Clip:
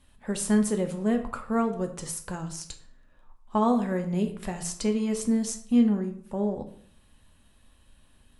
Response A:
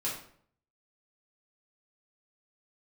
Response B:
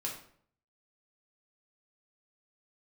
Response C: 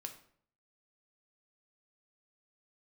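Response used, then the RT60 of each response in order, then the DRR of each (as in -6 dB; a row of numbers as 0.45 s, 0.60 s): C; 0.60 s, 0.60 s, 0.60 s; -6.5 dB, -2.0 dB, 5.0 dB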